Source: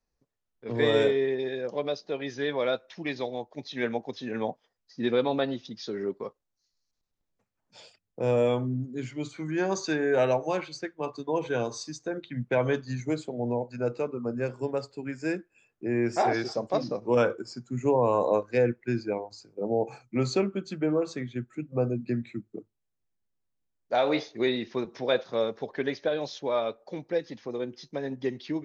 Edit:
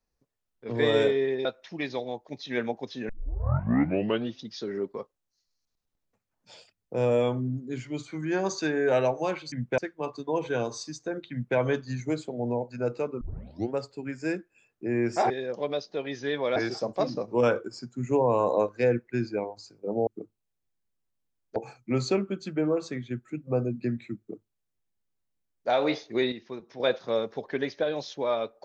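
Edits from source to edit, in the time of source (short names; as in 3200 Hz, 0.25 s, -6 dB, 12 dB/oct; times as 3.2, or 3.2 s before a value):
1.45–2.71 move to 16.3
4.35 tape start 1.28 s
12.31–12.57 copy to 10.78
14.21 tape start 0.53 s
22.44–23.93 copy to 19.81
24.57–25.05 gain -8 dB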